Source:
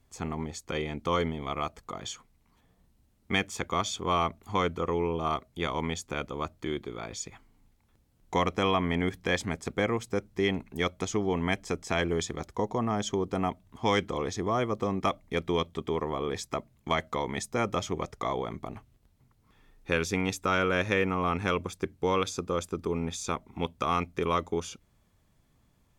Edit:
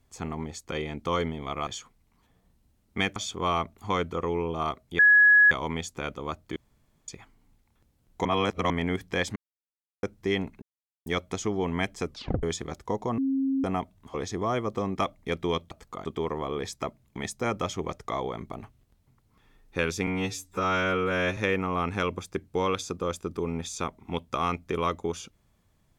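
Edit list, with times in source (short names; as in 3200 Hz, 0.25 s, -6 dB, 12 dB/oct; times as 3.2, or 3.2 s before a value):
1.67–2.01 move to 15.76
3.5–3.81 cut
5.64 add tone 1680 Hz -13.5 dBFS 0.52 s
6.69–7.21 room tone
8.38–8.83 reverse
9.49–10.16 mute
10.75 insert silence 0.44 s
11.75 tape stop 0.37 s
12.87–13.33 bleep 269 Hz -23 dBFS
13.83–14.19 cut
16.88–17.3 cut
20.2–20.85 stretch 2×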